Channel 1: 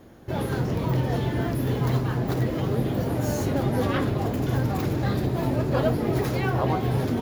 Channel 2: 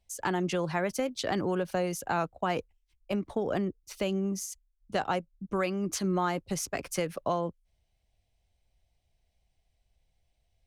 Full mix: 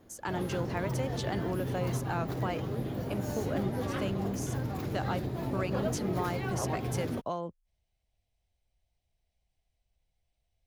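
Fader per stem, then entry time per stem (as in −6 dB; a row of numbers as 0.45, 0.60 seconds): −9.5, −5.5 decibels; 0.00, 0.00 seconds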